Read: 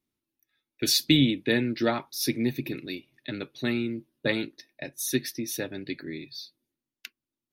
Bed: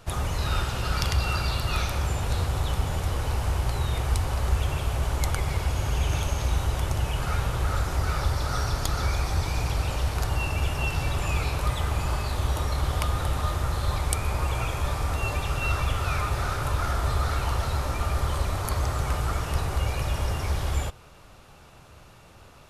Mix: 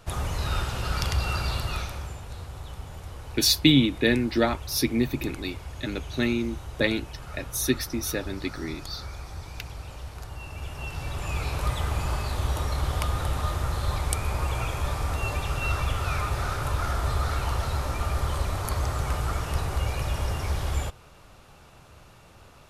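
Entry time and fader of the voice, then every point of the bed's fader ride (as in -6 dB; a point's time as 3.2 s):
2.55 s, +2.5 dB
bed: 1.59 s -1.5 dB
2.25 s -12.5 dB
10.37 s -12.5 dB
11.63 s -1 dB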